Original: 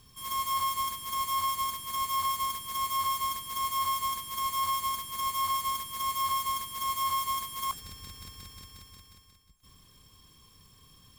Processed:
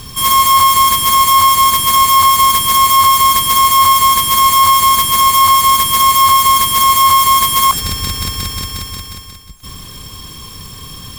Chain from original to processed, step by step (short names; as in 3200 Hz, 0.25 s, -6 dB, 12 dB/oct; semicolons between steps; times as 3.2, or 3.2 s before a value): maximiser +27.5 dB; gain -1 dB